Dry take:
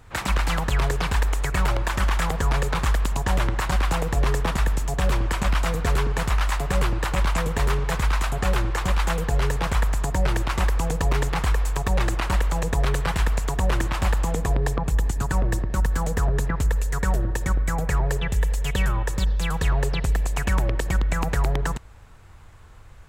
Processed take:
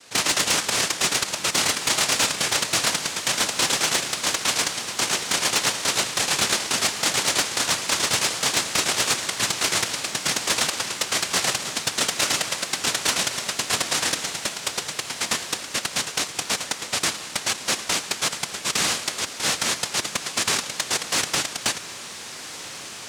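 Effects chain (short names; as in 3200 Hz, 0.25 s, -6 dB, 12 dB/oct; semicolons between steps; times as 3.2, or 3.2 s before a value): steep high-pass 1100 Hz 96 dB/oct; high shelf 5800 Hz -7 dB; noise vocoder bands 1; sine folder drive 7 dB, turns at -13.5 dBFS; diffused feedback echo 1.475 s, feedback 45%, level -12 dB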